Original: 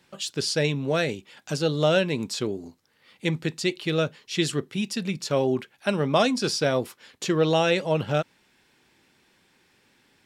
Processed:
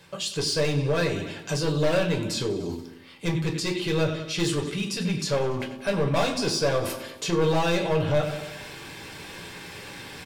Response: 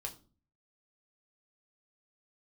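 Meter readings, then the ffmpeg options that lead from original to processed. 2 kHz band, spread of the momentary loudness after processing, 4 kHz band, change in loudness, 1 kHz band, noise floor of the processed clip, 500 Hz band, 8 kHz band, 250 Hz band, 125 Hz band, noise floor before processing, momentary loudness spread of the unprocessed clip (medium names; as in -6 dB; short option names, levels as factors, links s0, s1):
-1.0 dB, 15 LU, 0.0 dB, -0.5 dB, -1.0 dB, -44 dBFS, -0.5 dB, +1.5 dB, -1.0 dB, +2.0 dB, -64 dBFS, 9 LU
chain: -filter_complex "[0:a]areverse,acompressor=mode=upward:threshold=0.0251:ratio=2.5,areverse,aecho=1:1:94|188|282|376|470:0.158|0.0903|0.0515|0.0294|0.0167,volume=11.2,asoftclip=hard,volume=0.0891,alimiter=level_in=1.33:limit=0.0631:level=0:latency=1:release=26,volume=0.75[s0];[1:a]atrim=start_sample=2205[s1];[s0][s1]afir=irnorm=-1:irlink=0,volume=2.66"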